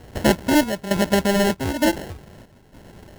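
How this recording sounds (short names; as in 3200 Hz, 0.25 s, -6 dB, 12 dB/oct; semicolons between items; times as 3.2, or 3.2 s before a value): aliases and images of a low sample rate 1200 Hz, jitter 0%; chopped level 1.1 Hz, depth 65%, duty 70%; Opus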